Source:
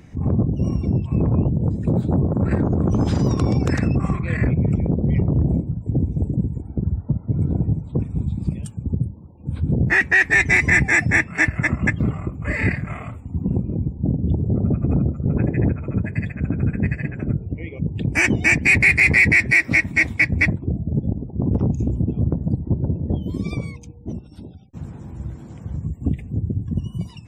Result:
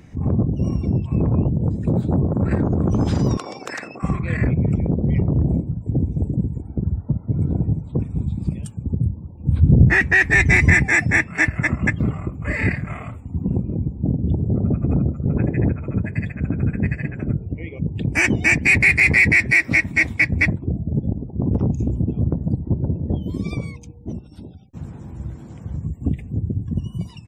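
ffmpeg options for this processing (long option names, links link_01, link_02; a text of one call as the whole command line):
ffmpeg -i in.wav -filter_complex "[0:a]asettb=1/sr,asplit=3[link_01][link_02][link_03];[link_01]atrim=end=3.374[link_04];[link_02]atrim=start=3.37:end=4.03,asetpts=PTS-STARTPTS,afade=type=in:duration=0.004:curve=qsin,afade=type=out:start_time=0.656:duration=0.004:curve=qsin,highpass=690[link_05];[link_03]atrim=start=4.026[link_06];[link_04][link_05]acrossfade=duration=0.004:curve1=hsin:curve2=qsin[link_07];[link_07][link_06]acrossfade=duration=0.004:curve1=qsin:curve2=hsin,asettb=1/sr,asplit=3[link_08][link_09][link_10];[link_08]atrim=end=9.034[link_11];[link_09]atrim=start=9.03:end=10.74,asetpts=PTS-STARTPTS,afade=type=in:duration=0.004:curve=qsin,afade=type=out:start_time=1.706:duration=0.004:curve=qsin,lowshelf=frequency=210:gain=10.5[link_12];[link_10]atrim=start=10.736[link_13];[link_11][link_12]acrossfade=duration=0.004:curve1=hsin:curve2=qsin[link_14];[link_14][link_13]acrossfade=duration=0.004:curve1=qsin:curve2=hsin,asplit=2[link_15][link_16];[link_16]afade=type=in:start_time=13.59:duration=0.01,afade=type=out:start_time=14.1:duration=0.01,aecho=0:1:340|680|1020|1360|1700:0.211349|0.105674|0.0528372|0.0264186|0.0132093[link_17];[link_15][link_17]amix=inputs=2:normalize=0" out.wav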